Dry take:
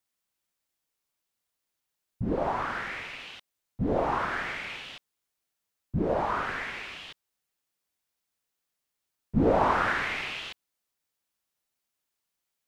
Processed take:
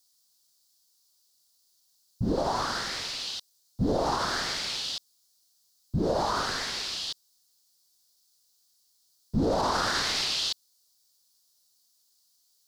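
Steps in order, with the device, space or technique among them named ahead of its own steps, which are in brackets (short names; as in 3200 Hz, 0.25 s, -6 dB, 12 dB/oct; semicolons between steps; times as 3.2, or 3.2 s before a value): over-bright horn tweeter (resonant high shelf 3300 Hz +12 dB, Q 3; limiter -20 dBFS, peak gain reduction 9 dB); gain +2.5 dB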